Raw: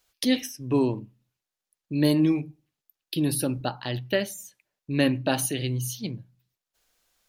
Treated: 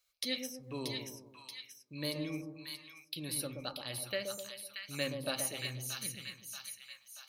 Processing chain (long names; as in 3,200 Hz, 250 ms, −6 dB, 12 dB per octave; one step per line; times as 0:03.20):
guitar amp tone stack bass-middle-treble 5-5-5
hollow resonant body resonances 550/1,200/2,200/4,000 Hz, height 11 dB, ringing for 20 ms
on a send: echo with a time of its own for lows and highs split 990 Hz, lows 125 ms, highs 631 ms, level −4.5 dB
on the sum: level −2 dB